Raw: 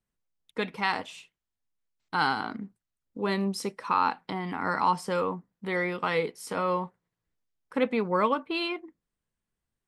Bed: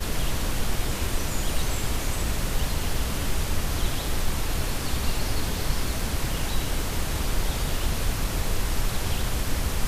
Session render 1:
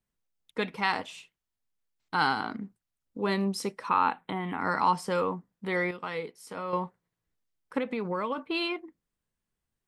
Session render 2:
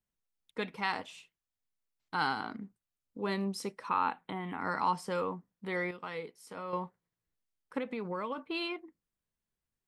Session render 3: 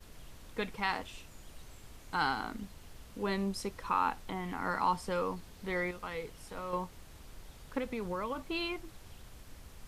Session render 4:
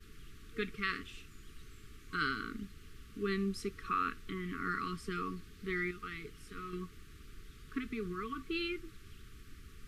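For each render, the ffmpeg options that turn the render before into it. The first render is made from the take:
-filter_complex "[0:a]asettb=1/sr,asplit=3[s0][s1][s2];[s0]atrim=end=3.894[s3];[s1]atrim=start=3.89:end=4.6,asetpts=PTS-STARTPTS,afade=t=in:d=0.004:c=qsin,afade=t=out:st=0.706:d=0.004:c=qsin,asuperstop=centerf=5400:order=8:qfactor=1.6[s4];[s2]atrim=start=4.596[s5];[s3][s4]acrossfade=d=0.004:c1=hsin:c2=qsin[s6];[s6][s5]acrossfade=d=0.004:c1=qsin:c2=hsin,asettb=1/sr,asplit=3[s7][s8][s9];[s7]atrim=end=7.784[s10];[s8]atrim=start=7.78:end=8.38,asetpts=PTS-STARTPTS,afade=t=in:d=0.004:c=qsin,afade=t=out:st=0.596:d=0.004:c=qsin,acompressor=threshold=0.0447:ratio=6:attack=3.2:release=140:knee=1:detection=peak[s11];[s9]atrim=start=8.376[s12];[s10][s11]acrossfade=d=0.004:c1=hsin:c2=qsin[s13];[s13][s12]acrossfade=d=0.004:c1=qsin:c2=hsin,asplit=3[s14][s15][s16];[s14]atrim=end=5.912[s17];[s15]atrim=start=5.908:end=6.732,asetpts=PTS-STARTPTS,volume=0.422[s18];[s16]atrim=start=6.728[s19];[s17][s18]acrossfade=d=0.004:c1=hsin:c2=hsin[s20];[s20][s19]acrossfade=d=0.004:c1=hsin:c2=hsin"
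-af "volume=0.531"
-filter_complex "[1:a]volume=0.0531[s0];[0:a][s0]amix=inputs=2:normalize=0"
-af "afftfilt=real='re*(1-between(b*sr/4096,460,1100))':imag='im*(1-between(b*sr/4096,460,1100))':win_size=4096:overlap=0.75,bass=f=250:g=-1,treble=f=4000:g=-6"

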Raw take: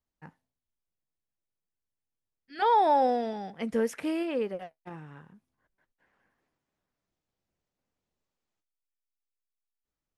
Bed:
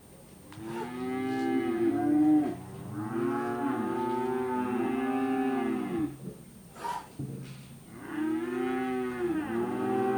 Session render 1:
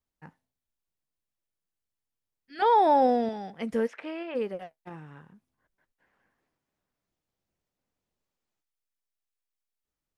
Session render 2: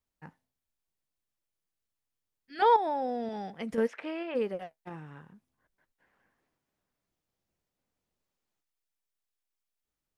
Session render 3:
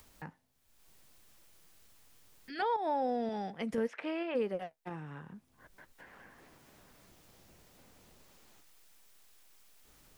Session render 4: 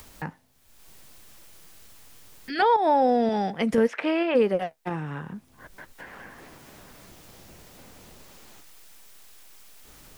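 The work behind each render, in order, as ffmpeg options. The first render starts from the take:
-filter_complex "[0:a]asettb=1/sr,asplit=3[s0][s1][s2];[s0]atrim=end=2.604[s3];[s1]atrim=start=2.6:end=3.29,asetpts=PTS-STARTPTS,afade=t=in:d=0.004:c=qsin,afade=t=out:st=0.686:d=0.004:c=qsin,lowshelf=f=390:g=8[s4];[s2]atrim=start=3.286[s5];[s3][s4]acrossfade=d=0.004:c1=hsin:c2=qsin[s6];[s6][s5]acrossfade=d=0.004:c1=qsin:c2=hsin,asplit=3[s7][s8][s9];[s7]afade=t=out:st=3.86:d=0.02[s10];[s8]highpass=480,lowpass=3000,afade=t=in:st=3.86:d=0.02,afade=t=out:st=4.34:d=0.02[s11];[s9]afade=t=in:st=4.34:d=0.02[s12];[s10][s11][s12]amix=inputs=3:normalize=0"
-filter_complex "[0:a]asettb=1/sr,asplit=3[s0][s1][s2];[s0]atrim=end=2.764[s3];[s1]atrim=start=2.76:end=3.78,asetpts=PTS-STARTPTS,afade=t=in:d=0.004:c=qsin,afade=t=out:st=1.016:d=0.004:c=qsin,acompressor=threshold=0.0224:ratio=2.5:attack=3.2:release=140:knee=1:detection=peak[s4];[s2]atrim=start=3.776[s5];[s3][s4]acrossfade=d=0.004:c1=hsin:c2=qsin[s6];[s6][s5]acrossfade=d=0.004:c1=qsin:c2=hsin"
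-filter_complex "[0:a]acrossover=split=150[s0][s1];[s1]alimiter=level_in=1.06:limit=0.0631:level=0:latency=1:release=152,volume=0.944[s2];[s0][s2]amix=inputs=2:normalize=0,acompressor=mode=upward:threshold=0.01:ratio=2.5"
-af "volume=3.98"

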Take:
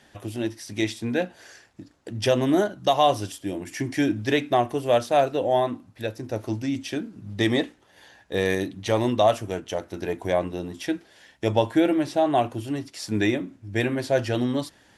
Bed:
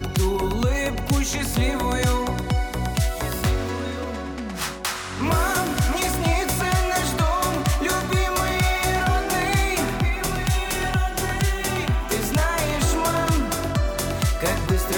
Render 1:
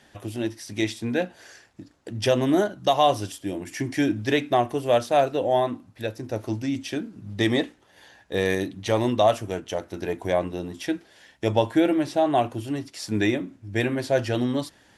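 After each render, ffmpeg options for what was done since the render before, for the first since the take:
-af anull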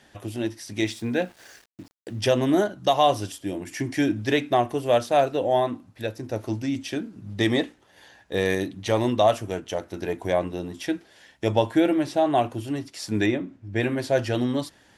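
-filter_complex "[0:a]asettb=1/sr,asplit=3[s0][s1][s2];[s0]atrim=end=0.824[s3];[s1]atrim=start=0.82:end=2.21,asetpts=PTS-STARTPTS,afade=t=in:d=0.004:c=qsin,afade=t=out:st=1.386:d=0.004:c=qsin,aeval=exprs='val(0)*gte(abs(val(0)),0.00355)':c=same[s4];[s2]atrim=start=2.206[s5];[s3][s4]acrossfade=d=0.004:c1=hsin:c2=qsin[s6];[s6][s5]acrossfade=d=0.004:c1=qsin:c2=hsin,asettb=1/sr,asplit=3[s7][s8][s9];[s7]atrim=end=13.264[s10];[s8]atrim=start=13.26:end=13.83,asetpts=PTS-STARTPTS,afade=t=in:d=0.004:c=qsin,afade=t=out:st=0.566:d=0.004:c=qsin,aemphasis=mode=reproduction:type=50kf[s11];[s9]atrim=start=13.826[s12];[s10][s11]acrossfade=d=0.004:c1=hsin:c2=qsin[s13];[s13][s12]acrossfade=d=0.004:c1=qsin:c2=hsin"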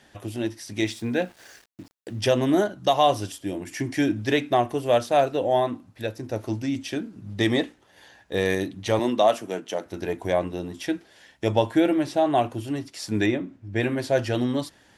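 -filter_complex "[0:a]asettb=1/sr,asplit=3[s0][s1][s2];[s0]atrim=end=8.994[s3];[s1]atrim=start=8.99:end=9.86,asetpts=PTS-STARTPTS,afade=t=in:d=0.004:c=qsin,afade=t=out:st=0.866:d=0.004:c=qsin,highpass=f=170:w=0.5412,highpass=f=170:w=1.3066[s4];[s2]atrim=start=9.856[s5];[s3][s4]acrossfade=d=0.004:c1=hsin:c2=qsin[s6];[s6][s5]acrossfade=d=0.004:c1=qsin:c2=hsin"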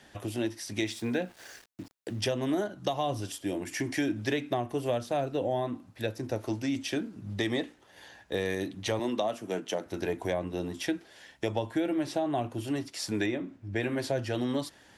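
-filter_complex "[0:a]acrossover=split=300[s0][s1];[s0]alimiter=level_in=1.88:limit=0.0631:level=0:latency=1:release=488,volume=0.531[s2];[s1]acompressor=threshold=0.0355:ratio=6[s3];[s2][s3]amix=inputs=2:normalize=0"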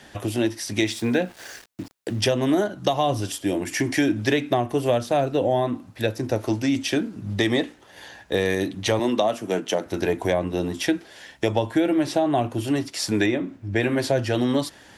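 -af "volume=2.66"

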